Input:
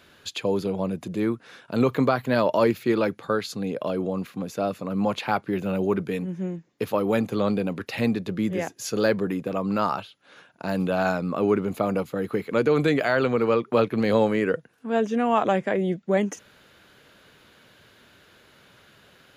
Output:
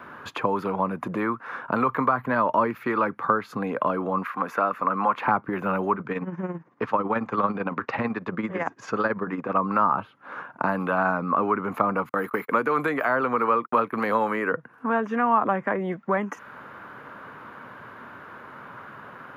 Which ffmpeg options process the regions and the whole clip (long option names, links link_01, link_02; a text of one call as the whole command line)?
ffmpeg -i in.wav -filter_complex "[0:a]asettb=1/sr,asplit=3[link_01][link_02][link_03];[link_01]atrim=end=4.234[link_04];[link_02]atrim=start=4.23:end=5.2,asetpts=PTS-STARTPTS,afade=type=in:duration=0.004:curve=qsin,afade=type=out:start_time=0.966:duration=0.004:curve=qsin,highpass=frequency=870:poles=1,equalizer=frequency=1600:width_type=o:width=1.5:gain=6.5[link_05];[link_03]atrim=start=5.196[link_06];[link_04][link_05]acrossfade=duration=0.004:curve1=hsin:curve2=qsin[link_07];[link_07][link_06]acrossfade=duration=0.004:curve1=qsin:curve2=hsin,asettb=1/sr,asplit=3[link_08][link_09][link_10];[link_08]atrim=end=5.954[link_11];[link_09]atrim=start=5.95:end=9.57,asetpts=PTS-STARTPTS,afade=type=in:duration=0.004:curve=qsin,afade=type=out:start_time=3.616:duration=0.004:curve=qsin,lowpass=frequency=7100:width=0.5412,lowpass=frequency=7100:width=1.3066,tremolo=f=18:d=0.62[link_12];[link_10]atrim=start=9.566[link_13];[link_11][link_12]acrossfade=duration=0.004:curve1=hsin:curve2=qsin[link_14];[link_14][link_13]acrossfade=duration=0.004:curve1=qsin:curve2=hsin,asettb=1/sr,asplit=3[link_15][link_16][link_17];[link_15]atrim=end=12.094[link_18];[link_16]atrim=start=12.09:end=14.52,asetpts=PTS-STARTPTS,afade=type=in:duration=0.004:curve=qsin,afade=type=out:start_time=2.426:duration=0.004:curve=qsin,agate=range=-49dB:threshold=-38dB:ratio=16:release=100:detection=peak,aemphasis=mode=production:type=bsi[link_19];[link_17]atrim=start=14.516[link_20];[link_18][link_19]acrossfade=duration=0.004:curve1=hsin:curve2=qsin[link_21];[link_21][link_20]acrossfade=duration=0.004:curve1=qsin:curve2=hsin,equalizer=frequency=125:width_type=o:width=1:gain=9,equalizer=frequency=250:width_type=o:width=1:gain=11,equalizer=frequency=500:width_type=o:width=1:gain=5,equalizer=frequency=1000:width_type=o:width=1:gain=11,equalizer=frequency=2000:width_type=o:width=1:gain=4,equalizer=frequency=4000:width_type=o:width=1:gain=-8,equalizer=frequency=8000:width_type=o:width=1:gain=-9,acrossover=split=440|1100[link_22][link_23][link_24];[link_22]acompressor=threshold=-30dB:ratio=4[link_25];[link_23]acompressor=threshold=-35dB:ratio=4[link_26];[link_24]acompressor=threshold=-34dB:ratio=4[link_27];[link_25][link_26][link_27]amix=inputs=3:normalize=0,equalizer=frequency=1200:width=1:gain=12,volume=-2dB" out.wav